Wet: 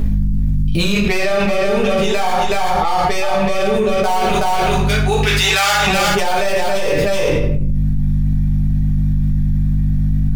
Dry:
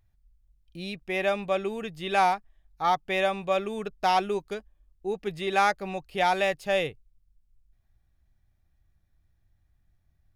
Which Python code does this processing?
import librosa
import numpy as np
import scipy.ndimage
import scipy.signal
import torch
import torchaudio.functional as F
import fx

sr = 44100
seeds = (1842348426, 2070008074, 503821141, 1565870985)

y = fx.tracing_dist(x, sr, depth_ms=0.24)
y = fx.highpass(y, sr, hz=1200.0, slope=12, at=(4.23, 5.87))
y = fx.rider(y, sr, range_db=10, speed_s=2.0)
y = fx.add_hum(y, sr, base_hz=50, snr_db=18)
y = y + 10.0 ** (-6.0 / 20.0) * np.pad(y, (int(373 * sr / 1000.0), 0))[:len(y)]
y = fx.room_shoebox(y, sr, seeds[0], volume_m3=76.0, walls='mixed', distance_m=1.5)
y = fx.env_flatten(y, sr, amount_pct=100)
y = y * librosa.db_to_amplitude(-5.0)